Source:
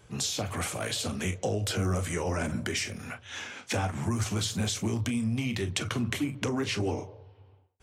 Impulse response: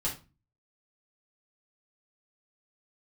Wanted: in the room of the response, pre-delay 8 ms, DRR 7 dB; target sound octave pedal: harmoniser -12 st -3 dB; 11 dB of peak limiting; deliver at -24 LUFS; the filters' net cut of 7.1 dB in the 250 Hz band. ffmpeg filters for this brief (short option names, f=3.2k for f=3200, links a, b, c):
-filter_complex "[0:a]equalizer=f=250:t=o:g=-9,alimiter=level_in=1.5dB:limit=-24dB:level=0:latency=1,volume=-1.5dB,asplit=2[a][b];[1:a]atrim=start_sample=2205,adelay=8[c];[b][c]afir=irnorm=-1:irlink=0,volume=-12dB[d];[a][d]amix=inputs=2:normalize=0,asplit=2[e][f];[f]asetrate=22050,aresample=44100,atempo=2,volume=-3dB[g];[e][g]amix=inputs=2:normalize=0,volume=8.5dB"